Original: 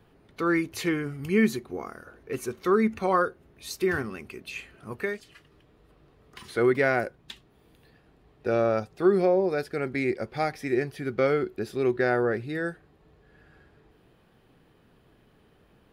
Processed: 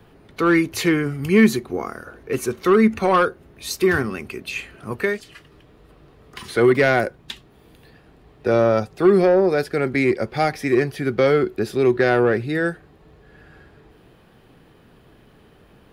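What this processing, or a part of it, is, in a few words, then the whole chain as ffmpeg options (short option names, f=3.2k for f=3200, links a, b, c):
one-band saturation: -filter_complex "[0:a]acrossover=split=240|2900[a][b][c];[b]asoftclip=type=tanh:threshold=-19dB[d];[a][d][c]amix=inputs=3:normalize=0,volume=9dB"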